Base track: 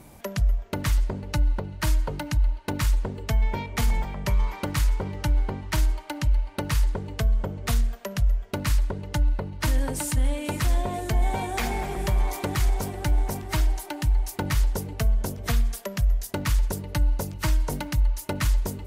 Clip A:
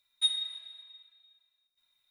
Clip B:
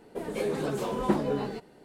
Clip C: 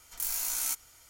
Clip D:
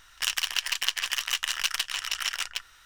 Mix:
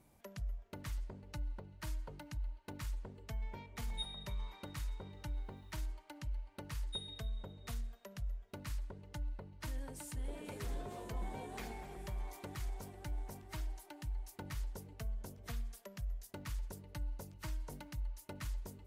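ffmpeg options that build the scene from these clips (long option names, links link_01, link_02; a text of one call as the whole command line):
ffmpeg -i bed.wav -i cue0.wav -i cue1.wav -filter_complex "[1:a]asplit=2[link_01][link_02];[0:a]volume=-19dB[link_03];[link_01]acompressor=mode=upward:threshold=-41dB:ratio=2.5:attack=3.2:release=140:knee=2.83:detection=peak[link_04];[2:a]acompressor=threshold=-40dB:ratio=6:attack=3.2:release=140:knee=1:detection=peak[link_05];[link_04]atrim=end=2.1,asetpts=PTS-STARTPTS,volume=-16dB,afade=type=in:duration=0.004:curve=hsin,afade=type=out:start_time=2.096:duration=0.004:curve=hsin,adelay=3760[link_06];[link_02]atrim=end=2.1,asetpts=PTS-STARTPTS,volume=-16.5dB,afade=type=in:duration=0.004:curve=hsin,afade=type=out:start_time=2.096:duration=0.004:curve=hsin,adelay=6710[link_07];[link_05]atrim=end=1.84,asetpts=PTS-STARTPTS,volume=-8dB,afade=type=in:duration=0.004:curve=hsin,afade=type=out:start_time=1.836:duration=0.004:curve=hsin,adelay=10130[link_08];[link_03][link_06][link_07][link_08]amix=inputs=4:normalize=0" out.wav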